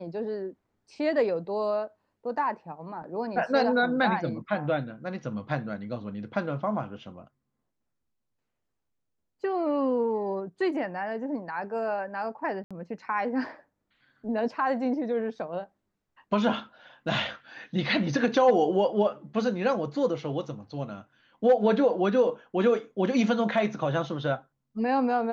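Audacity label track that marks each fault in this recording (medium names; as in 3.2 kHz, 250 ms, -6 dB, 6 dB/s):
12.640000	12.710000	dropout 66 ms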